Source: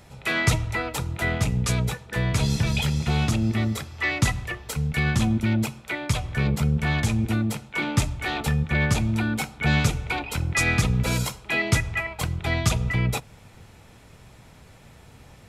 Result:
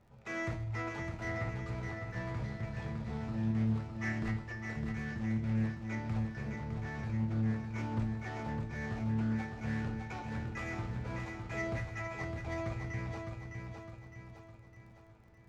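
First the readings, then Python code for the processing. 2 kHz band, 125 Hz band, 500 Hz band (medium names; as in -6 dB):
-15.5 dB, -12.5 dB, -10.5 dB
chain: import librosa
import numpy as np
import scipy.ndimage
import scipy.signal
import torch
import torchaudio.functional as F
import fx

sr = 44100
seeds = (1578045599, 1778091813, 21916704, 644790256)

y = scipy.signal.medfilt(x, 15)
y = scipy.signal.sosfilt(scipy.signal.butter(2, 5700.0, 'lowpass', fs=sr, output='sos'), y)
y = fx.rider(y, sr, range_db=3, speed_s=0.5)
y = np.clip(y, -10.0 ** (-18.5 / 20.0), 10.0 ** (-18.5 / 20.0))
y = fx.comb_fb(y, sr, f0_hz=110.0, decay_s=0.49, harmonics='all', damping=0.0, mix_pct=80)
y = fx.dmg_crackle(y, sr, seeds[0], per_s=37.0, level_db=-53.0)
y = fx.echo_feedback(y, sr, ms=609, feedback_pct=49, wet_db=-5.0)
y = fx.doppler_dist(y, sr, depth_ms=0.23)
y = F.gain(torch.from_numpy(y), -5.5).numpy()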